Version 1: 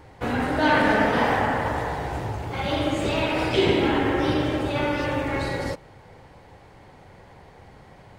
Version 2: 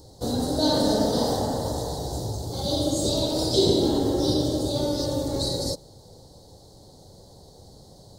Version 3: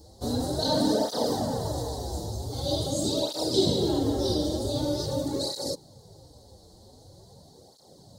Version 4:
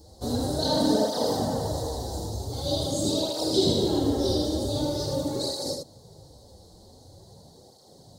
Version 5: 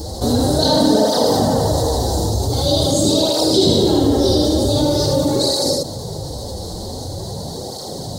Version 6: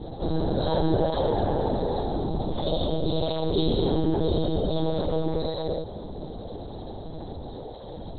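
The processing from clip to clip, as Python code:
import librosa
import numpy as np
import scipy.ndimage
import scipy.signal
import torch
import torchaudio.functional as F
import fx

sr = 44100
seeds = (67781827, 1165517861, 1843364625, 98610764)

y1 = fx.curve_eq(x, sr, hz=(590.0, 2500.0, 4000.0), db=(0, -30, 12))
y2 = fx.flanger_cancel(y1, sr, hz=0.45, depth_ms=7.8)
y3 = y2 + 10.0 ** (-5.0 / 20.0) * np.pad(y2, (int(79 * sr / 1000.0), 0))[:len(y2)]
y4 = fx.env_flatten(y3, sr, amount_pct=50)
y4 = y4 * librosa.db_to_amplitude(7.0)
y5 = fx.lpc_monotone(y4, sr, seeds[0], pitch_hz=160.0, order=10)
y5 = y5 * librosa.db_to_amplitude(-8.5)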